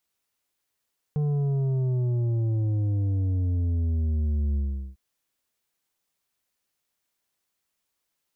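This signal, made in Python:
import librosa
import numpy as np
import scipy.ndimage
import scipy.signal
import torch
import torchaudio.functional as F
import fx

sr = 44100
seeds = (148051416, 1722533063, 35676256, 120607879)

y = fx.sub_drop(sr, level_db=-23.0, start_hz=150.0, length_s=3.8, drive_db=7.5, fade_s=0.4, end_hz=65.0)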